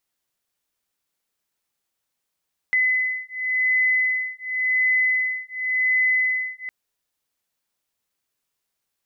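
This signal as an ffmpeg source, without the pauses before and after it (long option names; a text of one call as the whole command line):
ffmpeg -f lavfi -i "aevalsrc='0.0794*(sin(2*PI*2020*t)+sin(2*PI*2020.91*t))':duration=3.96:sample_rate=44100" out.wav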